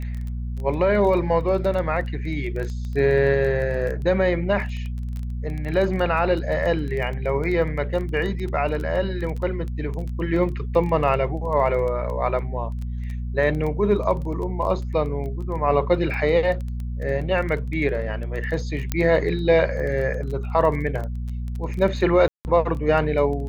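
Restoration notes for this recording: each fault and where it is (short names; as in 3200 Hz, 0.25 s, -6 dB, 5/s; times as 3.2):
crackle 14/s -28 dBFS
hum 60 Hz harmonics 4 -28 dBFS
18.92 pop -8 dBFS
22.28–22.45 gap 0.169 s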